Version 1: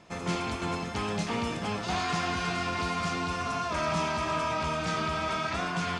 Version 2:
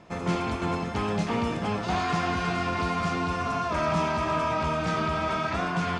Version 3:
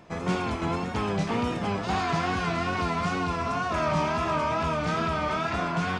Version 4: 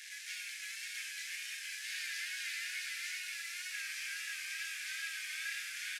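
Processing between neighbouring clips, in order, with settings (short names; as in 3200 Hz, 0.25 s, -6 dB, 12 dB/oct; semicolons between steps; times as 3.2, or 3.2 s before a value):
high shelf 2500 Hz -9 dB; gain +4.5 dB
wow and flutter 79 cents
delta modulation 64 kbps, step -32.5 dBFS; rippled Chebyshev high-pass 1600 Hz, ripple 3 dB; echo 0.534 s -4.5 dB; gain -4 dB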